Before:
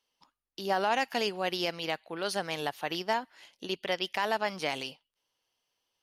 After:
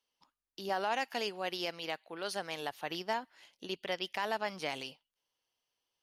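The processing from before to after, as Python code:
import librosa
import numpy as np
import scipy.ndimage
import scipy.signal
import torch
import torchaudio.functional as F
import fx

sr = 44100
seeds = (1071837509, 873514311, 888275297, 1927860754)

y = fx.low_shelf(x, sr, hz=130.0, db=-11.0, at=(0.69, 2.71))
y = y * librosa.db_to_amplitude(-5.0)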